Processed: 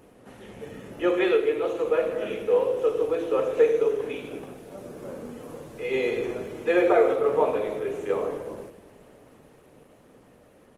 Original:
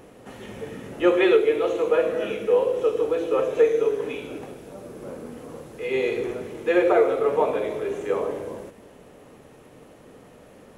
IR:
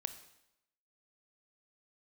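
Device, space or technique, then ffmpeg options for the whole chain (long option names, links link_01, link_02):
speakerphone in a meeting room: -filter_complex "[1:a]atrim=start_sample=2205[link_01];[0:a][link_01]afir=irnorm=-1:irlink=0,asplit=2[link_02][link_03];[link_03]adelay=80,highpass=300,lowpass=3400,asoftclip=type=hard:threshold=-18dB,volume=-24dB[link_04];[link_02][link_04]amix=inputs=2:normalize=0,dynaudnorm=framelen=310:gausssize=13:maxgain=3.5dB,volume=-3dB" -ar 48000 -c:a libopus -b:a 20k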